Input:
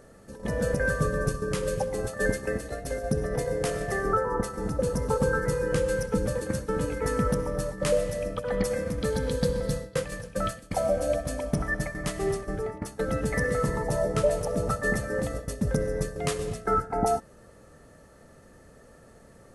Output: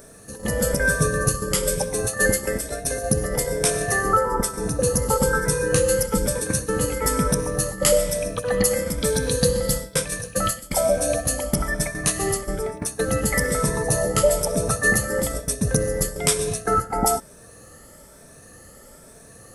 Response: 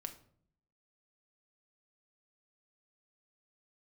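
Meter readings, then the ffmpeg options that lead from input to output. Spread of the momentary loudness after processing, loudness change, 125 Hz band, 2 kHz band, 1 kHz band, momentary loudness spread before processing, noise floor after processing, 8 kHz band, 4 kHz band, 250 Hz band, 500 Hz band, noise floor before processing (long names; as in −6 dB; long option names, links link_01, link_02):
5 LU, +6.5 dB, +4.0 dB, +7.0 dB, +5.5 dB, 6 LU, −47 dBFS, +16.5 dB, +11.5 dB, +4.0 dB, +4.5 dB, −53 dBFS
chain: -af "afftfilt=real='re*pow(10,8/40*sin(2*PI*(1.6*log(max(b,1)*sr/1024/100)/log(2)-(1.1)*(pts-256)/sr)))':imag='im*pow(10,8/40*sin(2*PI*(1.6*log(max(b,1)*sr/1024/100)/log(2)-(1.1)*(pts-256)/sr)))':win_size=1024:overlap=0.75,aemphasis=mode=production:type=75kf,volume=3.5dB"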